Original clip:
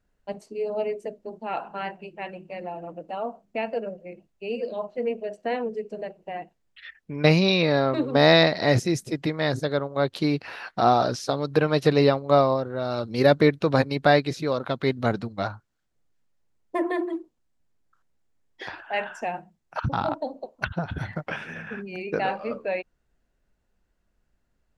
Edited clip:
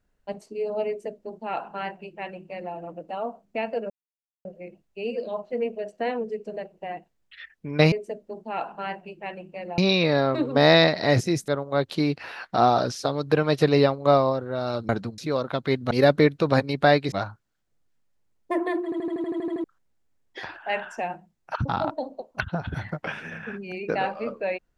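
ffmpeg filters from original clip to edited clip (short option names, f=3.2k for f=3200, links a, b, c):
-filter_complex "[0:a]asplit=19[a][b][c][d][e][f][g][h][i][j][k][l][m][n][o][p][q][r][s];[a]atrim=end=3.9,asetpts=PTS-STARTPTS,afade=t=out:st=3.896:d=0.004:c=hsin,apad=pad_dur=0.55[t];[b]atrim=start=3.9:end=7.372,asetpts=PTS-STARTPTS,afade=t=in:d=0.004:c=hsin[u];[c]atrim=start=0.878:end=2.742[v];[d]atrim=start=7.368:end=9.072[w];[e]atrim=start=9.718:end=13.132[x];[f]atrim=start=15.068:end=15.362[y];[g]atrim=start=14.338:end=15.072[z];[h]atrim=start=13.128:end=14.342[aa];[i]atrim=start=15.358:end=17.162[ab];[j]atrim=start=17.078:end=17.162[ac];[k]atrim=start=17.078:end=17.162[ad];[l]atrim=start=17.078:end=17.162[ae];[m]atrim=start=17.078:end=17.162[af];[n]atrim=start=17.078:end=17.162[ag];[o]atrim=start=17.078:end=17.162[ah];[p]atrim=start=17.078:end=17.162[ai];[q]atrim=start=17.078:end=17.162[aj];[r]atrim=start=17.078:end=17.162[ak];[s]atrim=start=17.878[al];[t][u]concat=n=2:v=0:a=1[am];[am][v]acrossfade=d=0.004:c1=hsin:c2=hsin[an];[an][w]acrossfade=d=0.004:c1=hsin:c2=hsin[ao];[ao][x]acrossfade=d=0.004:c1=hsin:c2=hsin[ap];[ap][y]acrossfade=d=0.004:c1=hsin:c2=hsin[aq];[aq][z]acrossfade=d=0.004:c1=hsin:c2=hsin[ar];[ar][aa]acrossfade=d=0.004:c1=hsin:c2=hsin[as];[as][ab]acrossfade=d=0.004:c1=hsin:c2=hsin[at];[at][ac]acrossfade=d=0.004:c1=hsin:c2=hsin[au];[au][ad]acrossfade=d=0.004:c1=hsin:c2=hsin[av];[av][ae]acrossfade=d=0.004:c1=hsin:c2=hsin[aw];[aw][af]acrossfade=d=0.004:c1=hsin:c2=hsin[ax];[ax][ag]acrossfade=d=0.004:c1=hsin:c2=hsin[ay];[ay][ah]acrossfade=d=0.004:c1=hsin:c2=hsin[az];[az][ai]acrossfade=d=0.004:c1=hsin:c2=hsin[ba];[ba][aj]acrossfade=d=0.004:c1=hsin:c2=hsin[bb];[bb][ak]acrossfade=d=0.004:c1=hsin:c2=hsin[bc];[bc][al]acrossfade=d=0.004:c1=hsin:c2=hsin"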